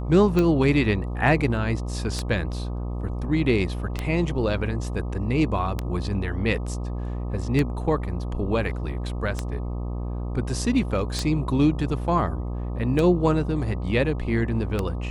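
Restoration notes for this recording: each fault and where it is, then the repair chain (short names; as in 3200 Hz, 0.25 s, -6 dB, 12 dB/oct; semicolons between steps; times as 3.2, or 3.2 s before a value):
buzz 60 Hz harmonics 21 -29 dBFS
tick 33 1/3 rpm -11 dBFS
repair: de-click; de-hum 60 Hz, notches 21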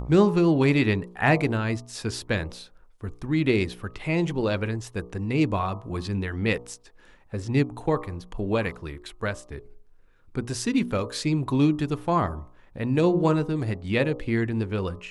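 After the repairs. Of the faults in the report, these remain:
none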